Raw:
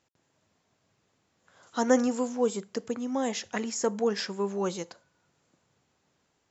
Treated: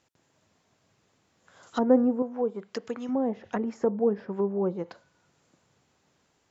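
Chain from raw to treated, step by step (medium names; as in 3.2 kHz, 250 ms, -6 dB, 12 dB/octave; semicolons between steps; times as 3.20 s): 2.22–3.09 s: bass shelf 460 Hz -8.5 dB; low-pass that closes with the level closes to 640 Hz, closed at -27.5 dBFS; trim +3.5 dB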